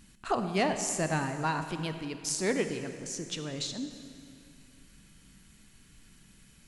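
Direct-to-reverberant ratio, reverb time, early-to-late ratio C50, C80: 7.5 dB, 2.4 s, 8.0 dB, 9.0 dB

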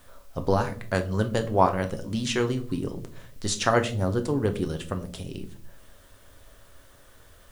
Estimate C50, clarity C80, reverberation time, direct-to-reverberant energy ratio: 14.0 dB, 18.5 dB, 0.55 s, 6.0 dB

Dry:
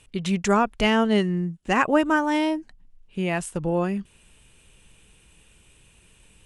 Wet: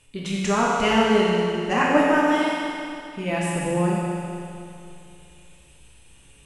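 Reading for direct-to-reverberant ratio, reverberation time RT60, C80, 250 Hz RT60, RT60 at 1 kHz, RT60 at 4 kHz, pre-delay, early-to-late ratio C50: -6.0 dB, 2.6 s, -1.0 dB, 2.6 s, 2.6 s, 2.6 s, 7 ms, -2.5 dB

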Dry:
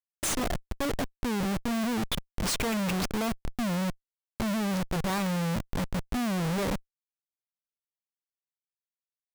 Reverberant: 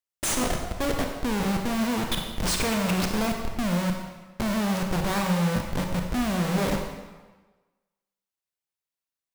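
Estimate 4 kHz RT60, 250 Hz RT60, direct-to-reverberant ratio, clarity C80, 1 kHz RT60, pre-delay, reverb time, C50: 1.1 s, 1.2 s, 2.0 dB, 5.5 dB, 1.3 s, 28 ms, 1.3 s, 4.0 dB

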